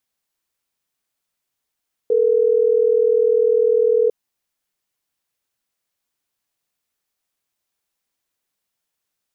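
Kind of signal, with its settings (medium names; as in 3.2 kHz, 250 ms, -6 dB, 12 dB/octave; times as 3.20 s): call progress tone ringback tone, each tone -15.5 dBFS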